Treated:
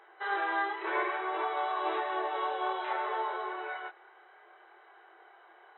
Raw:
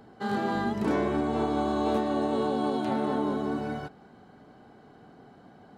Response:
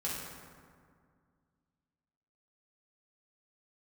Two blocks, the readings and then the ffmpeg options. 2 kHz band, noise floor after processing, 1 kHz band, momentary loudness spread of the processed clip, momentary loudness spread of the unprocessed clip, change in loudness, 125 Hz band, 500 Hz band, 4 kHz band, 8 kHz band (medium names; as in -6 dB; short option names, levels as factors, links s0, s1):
+5.0 dB, -58 dBFS, +0.5 dB, 6 LU, 5 LU, -4.5 dB, under -40 dB, -7.5 dB, -1.5 dB, no reading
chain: -af "equalizer=f=500:t=o:w=1:g=-6,equalizer=f=1000:t=o:w=1:g=6,equalizer=f=2000:t=o:w=1:g=11,acontrast=25,afftfilt=real='re*between(b*sr/4096,330,4000)':imag='im*between(b*sr/4096,330,4000)':win_size=4096:overlap=0.75,flanger=delay=22.5:depth=5.5:speed=0.6,volume=0.473"